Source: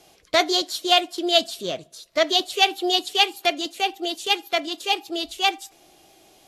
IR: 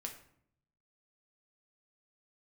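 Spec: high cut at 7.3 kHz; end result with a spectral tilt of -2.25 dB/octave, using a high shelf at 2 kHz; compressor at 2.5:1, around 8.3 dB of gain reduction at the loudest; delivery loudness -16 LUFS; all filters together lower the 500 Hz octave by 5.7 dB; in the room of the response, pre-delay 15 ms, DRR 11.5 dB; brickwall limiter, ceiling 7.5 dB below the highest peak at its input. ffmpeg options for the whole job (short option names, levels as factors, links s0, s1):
-filter_complex "[0:a]lowpass=7300,equalizer=f=500:t=o:g=-9,highshelf=f=2000:g=-5.5,acompressor=threshold=0.0355:ratio=2.5,alimiter=limit=0.075:level=0:latency=1,asplit=2[s0][s1];[1:a]atrim=start_sample=2205,adelay=15[s2];[s1][s2]afir=irnorm=-1:irlink=0,volume=0.335[s3];[s0][s3]amix=inputs=2:normalize=0,volume=8.41"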